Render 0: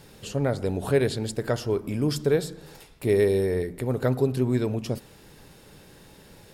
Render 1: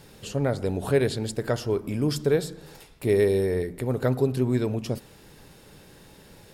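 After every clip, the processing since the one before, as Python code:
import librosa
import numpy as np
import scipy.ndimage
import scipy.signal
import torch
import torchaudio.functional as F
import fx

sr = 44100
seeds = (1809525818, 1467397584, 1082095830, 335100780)

y = x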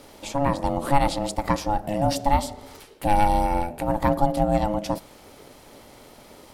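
y = x * np.sin(2.0 * np.pi * 420.0 * np.arange(len(x)) / sr)
y = y * 10.0 ** (5.5 / 20.0)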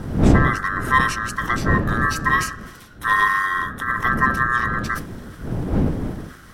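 y = fx.band_swap(x, sr, width_hz=1000)
y = fx.dmg_wind(y, sr, seeds[0], corner_hz=230.0, level_db=-24.0)
y = fx.sustainer(y, sr, db_per_s=94.0)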